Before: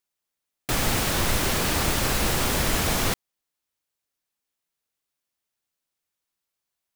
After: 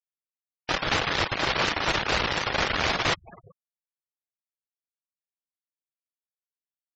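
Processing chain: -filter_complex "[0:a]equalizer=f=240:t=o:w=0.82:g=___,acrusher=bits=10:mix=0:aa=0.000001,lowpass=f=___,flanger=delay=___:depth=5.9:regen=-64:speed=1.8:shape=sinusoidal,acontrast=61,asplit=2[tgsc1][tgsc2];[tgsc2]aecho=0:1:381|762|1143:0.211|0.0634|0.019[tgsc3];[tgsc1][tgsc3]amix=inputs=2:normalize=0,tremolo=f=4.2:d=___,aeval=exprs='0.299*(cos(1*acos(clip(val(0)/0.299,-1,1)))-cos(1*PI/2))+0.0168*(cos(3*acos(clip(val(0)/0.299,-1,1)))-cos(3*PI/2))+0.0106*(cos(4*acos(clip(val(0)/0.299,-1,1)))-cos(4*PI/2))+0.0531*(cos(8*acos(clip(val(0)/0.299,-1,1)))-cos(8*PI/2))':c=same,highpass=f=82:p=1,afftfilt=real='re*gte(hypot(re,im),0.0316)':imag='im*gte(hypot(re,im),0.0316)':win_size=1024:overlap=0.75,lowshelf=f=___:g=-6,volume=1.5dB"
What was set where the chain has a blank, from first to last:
-6.5, 4200, 0.6, 0.4, 410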